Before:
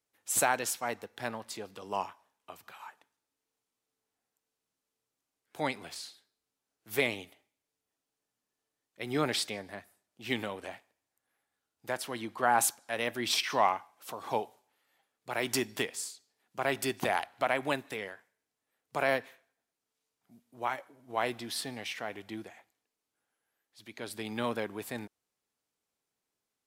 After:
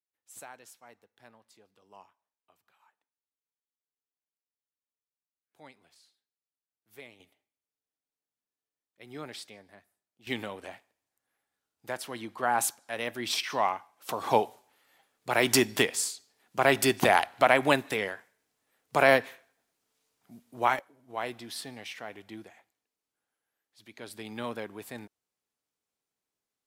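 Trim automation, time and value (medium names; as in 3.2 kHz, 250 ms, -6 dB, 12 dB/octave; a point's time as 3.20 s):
-19.5 dB
from 7.20 s -11.5 dB
from 10.27 s -1 dB
from 14.09 s +8 dB
from 20.79 s -3 dB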